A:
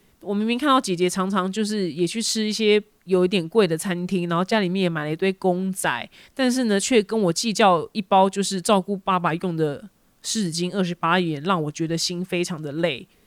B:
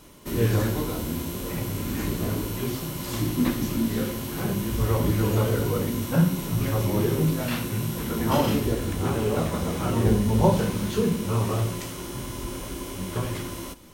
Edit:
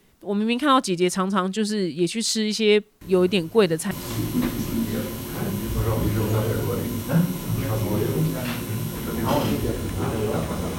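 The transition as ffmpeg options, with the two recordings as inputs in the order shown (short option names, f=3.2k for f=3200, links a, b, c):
-filter_complex "[1:a]asplit=2[a][b];[0:a]apad=whole_dur=10.78,atrim=end=10.78,atrim=end=3.912[c];[b]atrim=start=2.938:end=9.81[d];[a]atrim=start=2.04:end=2.94,asetpts=PTS-STARTPTS,volume=-14.5dB,afade=t=in:d=0.004:c=hsin,afade=t=out:st=0.896:d=0.004:c=hsin,adelay=3010[e];[c][d]acrossfade=d=0.004:c1=hsin:c2=hsin[f];[f][e]amix=inputs=2:normalize=0"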